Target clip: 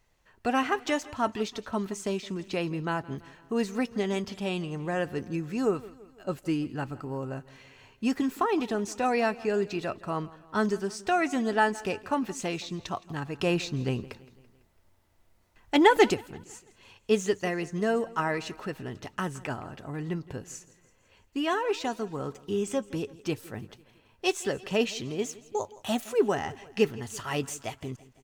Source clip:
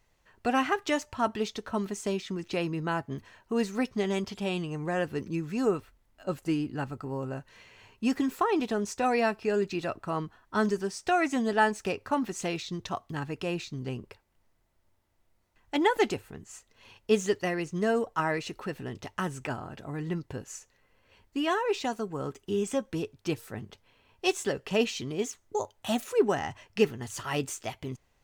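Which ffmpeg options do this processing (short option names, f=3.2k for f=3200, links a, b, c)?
-filter_complex "[0:a]asplit=2[a][b];[b]aecho=0:1:167|334|501|668:0.1|0.053|0.0281|0.0149[c];[a][c]amix=inputs=2:normalize=0,asplit=3[d][e][f];[d]afade=t=out:st=13.39:d=0.02[g];[e]acontrast=48,afade=t=in:st=13.39:d=0.02,afade=t=out:st=16.13:d=0.02[h];[f]afade=t=in:st=16.13:d=0.02[i];[g][h][i]amix=inputs=3:normalize=0"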